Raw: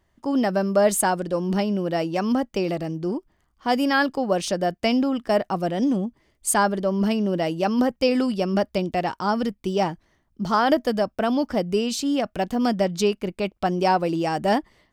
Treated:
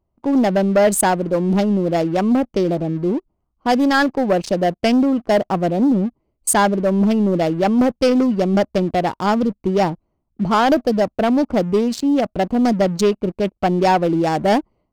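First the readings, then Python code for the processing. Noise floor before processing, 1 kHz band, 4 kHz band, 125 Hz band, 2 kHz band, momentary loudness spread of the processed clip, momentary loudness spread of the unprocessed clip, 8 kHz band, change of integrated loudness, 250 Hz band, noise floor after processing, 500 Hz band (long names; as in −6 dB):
−69 dBFS, +4.5 dB, +1.5 dB, +6.5 dB, +3.5 dB, 5 LU, 6 LU, +4.0 dB, +5.5 dB, +6.5 dB, −73 dBFS, +5.0 dB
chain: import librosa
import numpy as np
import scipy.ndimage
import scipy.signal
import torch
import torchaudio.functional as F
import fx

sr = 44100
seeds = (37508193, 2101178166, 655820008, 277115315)

y = fx.wiener(x, sr, points=25)
y = fx.leveller(y, sr, passes=2)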